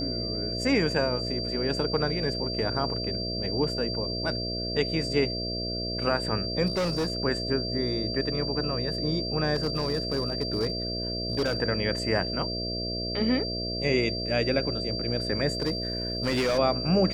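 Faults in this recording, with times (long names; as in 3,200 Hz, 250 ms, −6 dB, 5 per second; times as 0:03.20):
mains buzz 60 Hz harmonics 11 −34 dBFS
whistle 4,700 Hz −32 dBFS
0:06.66–0:07.12: clipping −23.5 dBFS
0:09.54–0:11.60: clipping −21.5 dBFS
0:15.53–0:16.59: clipping −22 dBFS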